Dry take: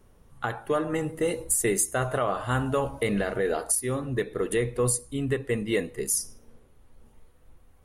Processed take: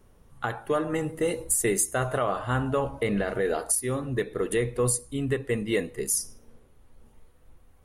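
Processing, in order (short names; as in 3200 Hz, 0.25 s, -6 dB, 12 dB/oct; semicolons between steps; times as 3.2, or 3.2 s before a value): 2.39–3.28 high shelf 4700 Hz -8 dB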